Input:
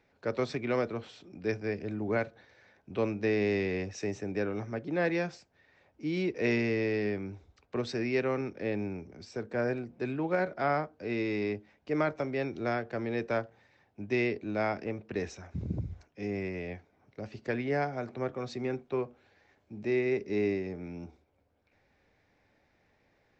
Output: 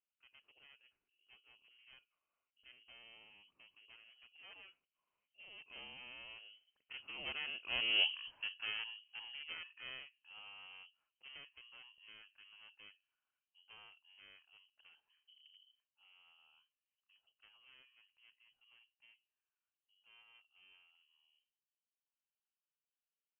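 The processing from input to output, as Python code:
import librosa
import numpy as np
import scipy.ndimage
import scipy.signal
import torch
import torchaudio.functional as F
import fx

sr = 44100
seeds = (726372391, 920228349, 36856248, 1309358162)

y = np.minimum(x, 2.0 * 10.0 ** (-30.5 / 20.0) - x)
y = fx.doppler_pass(y, sr, speed_mps=37, closest_m=1.9, pass_at_s=8.04)
y = fx.freq_invert(y, sr, carrier_hz=3100)
y = y * librosa.db_to_amplitude(11.0)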